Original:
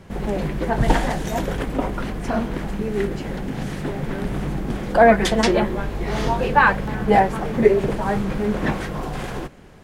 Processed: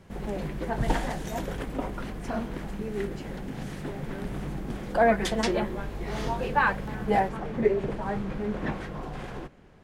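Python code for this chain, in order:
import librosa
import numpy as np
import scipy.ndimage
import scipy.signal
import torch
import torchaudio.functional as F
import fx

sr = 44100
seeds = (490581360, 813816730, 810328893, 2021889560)

y = fx.high_shelf(x, sr, hz=6300.0, db=fx.steps((0.0, 2.0), (7.28, -10.5)))
y = y * librosa.db_to_amplitude(-8.5)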